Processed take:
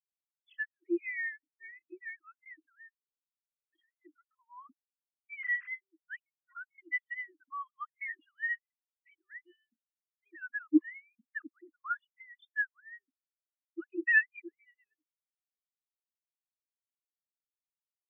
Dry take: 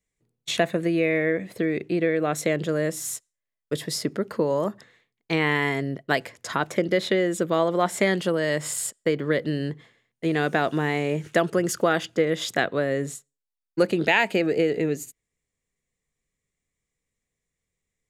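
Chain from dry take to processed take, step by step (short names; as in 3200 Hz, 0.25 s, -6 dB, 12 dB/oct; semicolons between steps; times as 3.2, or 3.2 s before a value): sine-wave speech; reverb removal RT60 2 s; Chebyshev band-stop 320–1000 Hz, order 4; spectral expander 2.5:1; gain +3.5 dB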